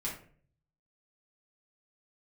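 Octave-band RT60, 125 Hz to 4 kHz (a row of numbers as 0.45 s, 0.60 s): 1.0 s, 0.60 s, 0.55 s, 0.40 s, 0.40 s, 0.30 s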